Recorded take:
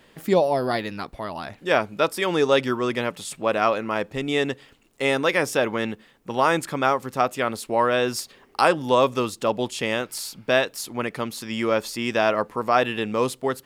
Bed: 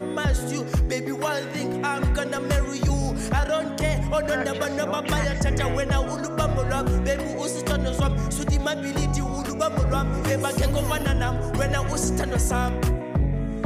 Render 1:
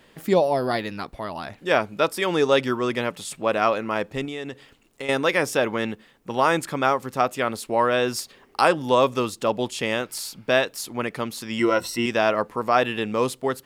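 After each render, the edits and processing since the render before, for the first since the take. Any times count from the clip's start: 4.25–5.09 s: compression 5:1, threshold -29 dBFS; 11.58–12.06 s: rippled EQ curve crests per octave 2, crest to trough 15 dB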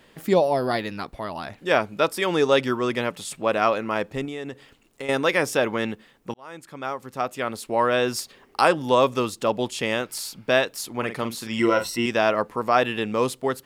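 4.03–5.14 s: dynamic bell 3.5 kHz, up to -4 dB, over -47 dBFS, Q 0.76; 6.34–7.93 s: fade in; 10.90–11.89 s: doubling 44 ms -9 dB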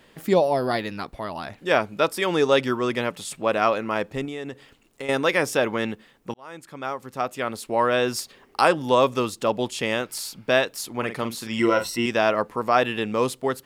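no audible change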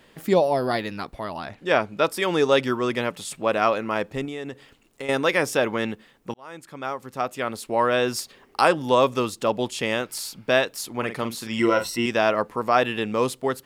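1.37–2.05 s: treble shelf 9.4 kHz -9.5 dB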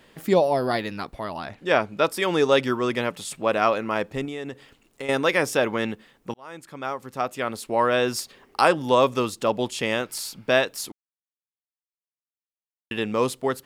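10.92–12.91 s: mute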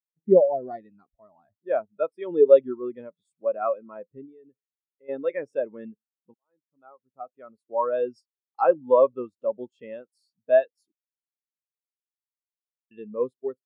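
spectral contrast expander 2.5:1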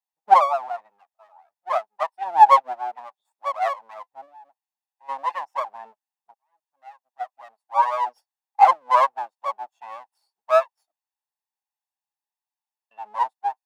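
comb filter that takes the minimum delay 1.1 ms; resonant high-pass 820 Hz, resonance Q 4.9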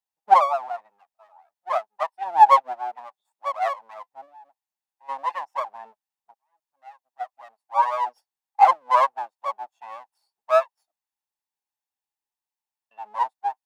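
trim -1 dB

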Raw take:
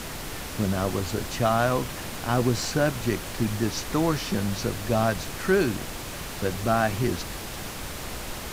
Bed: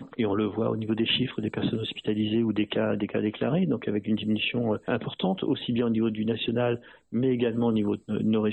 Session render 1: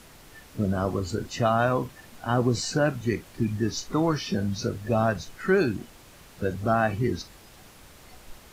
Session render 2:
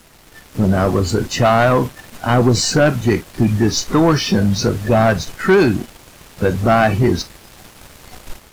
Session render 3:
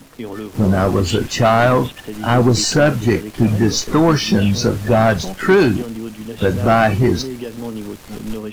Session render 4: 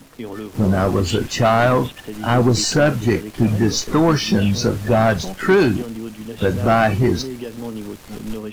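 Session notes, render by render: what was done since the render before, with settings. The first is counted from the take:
noise print and reduce 15 dB
waveshaping leveller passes 2; level rider gain up to 6 dB
add bed -3 dB
trim -2 dB

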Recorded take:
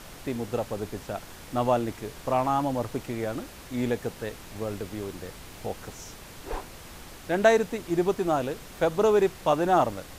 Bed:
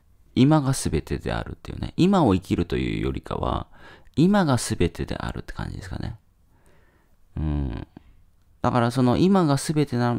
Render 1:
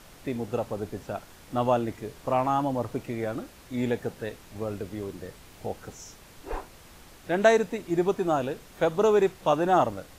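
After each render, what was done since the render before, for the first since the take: noise print and reduce 6 dB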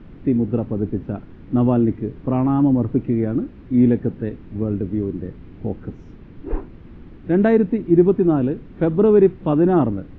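Bessel low-pass 2 kHz, order 4; resonant low shelf 440 Hz +12.5 dB, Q 1.5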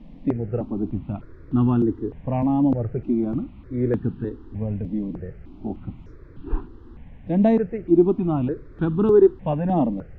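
stepped phaser 3.3 Hz 380–2100 Hz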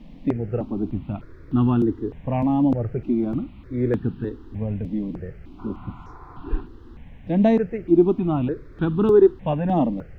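5.61–6.56 s: spectral replace 570–1500 Hz after; treble shelf 2.3 kHz +8.5 dB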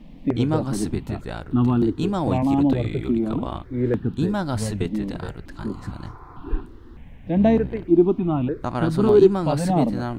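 add bed -5.5 dB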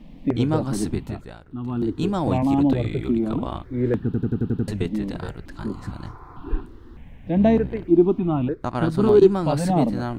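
0.99–2.03 s: dip -12.5 dB, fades 0.40 s; 4.05 s: stutter in place 0.09 s, 7 plays; 8.51–9.22 s: transient shaper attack 0 dB, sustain -9 dB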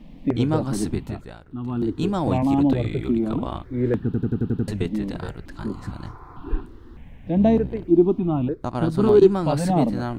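7.30–8.96 s: peaking EQ 1.8 kHz -6 dB 1.3 oct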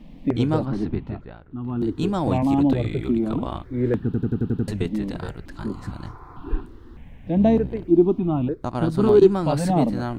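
0.65–1.81 s: distance through air 300 m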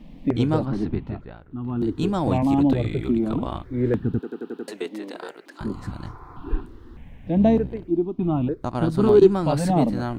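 4.19–5.61 s: high-pass 330 Hz 24 dB/octave; 7.49–8.19 s: fade out, to -13 dB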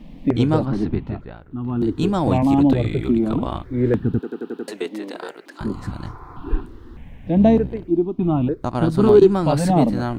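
trim +3.5 dB; peak limiter -3 dBFS, peak gain reduction 3 dB

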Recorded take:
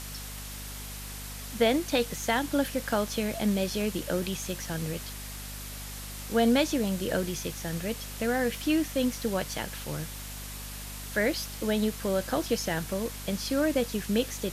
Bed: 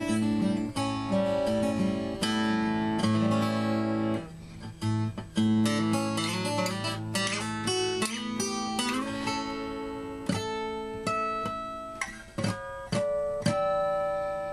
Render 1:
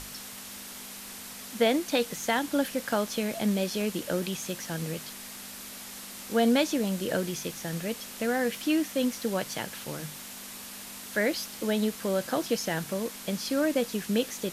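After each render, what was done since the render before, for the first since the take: hum notches 50/100/150 Hz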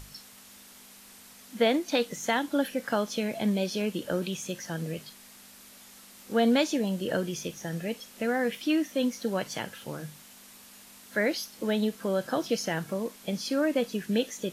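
noise print and reduce 9 dB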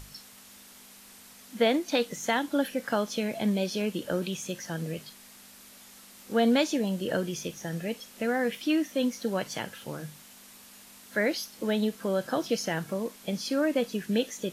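no audible change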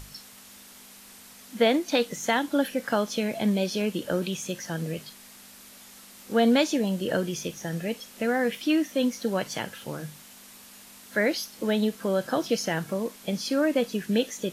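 trim +2.5 dB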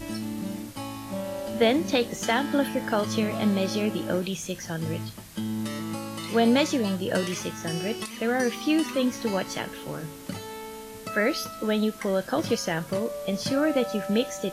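add bed -6 dB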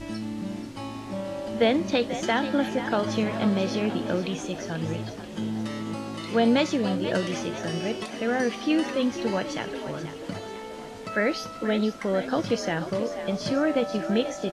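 distance through air 72 m; frequency-shifting echo 486 ms, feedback 58%, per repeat +49 Hz, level -11.5 dB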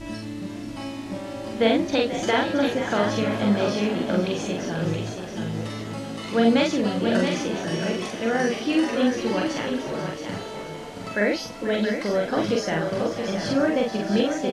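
doubling 44 ms -2 dB; on a send: delay 674 ms -7 dB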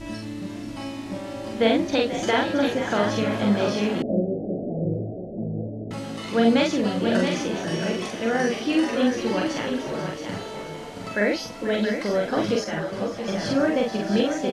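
4.02–5.91 s: steep low-pass 710 Hz 72 dB/octave; 12.64–13.28 s: three-phase chorus

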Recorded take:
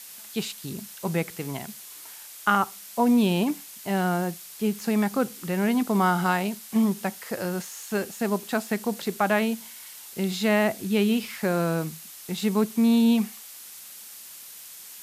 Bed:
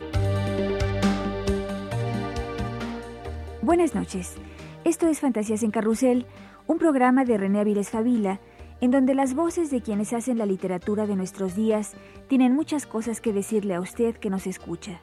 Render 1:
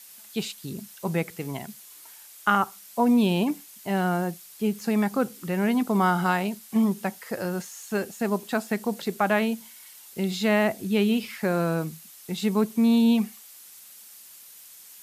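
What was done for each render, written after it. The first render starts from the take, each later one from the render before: noise reduction 6 dB, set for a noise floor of -44 dBFS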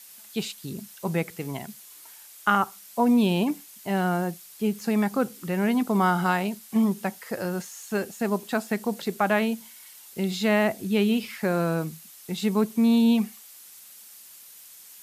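no audible change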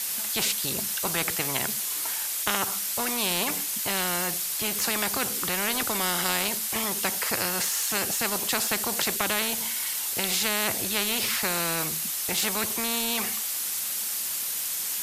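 spectrum-flattening compressor 4:1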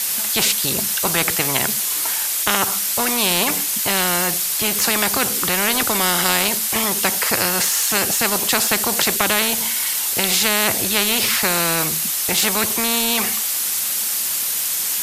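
trim +8.5 dB; peak limiter -2 dBFS, peak gain reduction 1.5 dB

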